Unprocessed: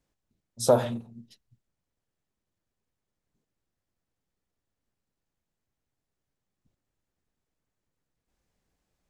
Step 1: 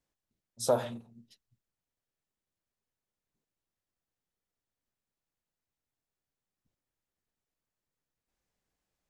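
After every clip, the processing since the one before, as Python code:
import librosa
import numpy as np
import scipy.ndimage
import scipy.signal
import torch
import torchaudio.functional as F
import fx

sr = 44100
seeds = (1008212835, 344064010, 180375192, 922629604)

y = fx.low_shelf(x, sr, hz=400.0, db=-5.5)
y = F.gain(torch.from_numpy(y), -4.5).numpy()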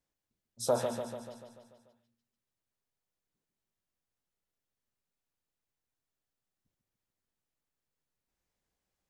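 y = fx.echo_feedback(x, sr, ms=146, feedback_pct=58, wet_db=-6.5)
y = F.gain(torch.from_numpy(y), -2.0).numpy()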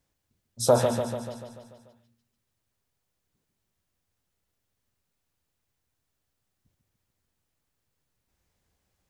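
y = fx.peak_eq(x, sr, hz=86.0, db=8.5, octaves=1.4)
y = F.gain(torch.from_numpy(y), 8.5).numpy()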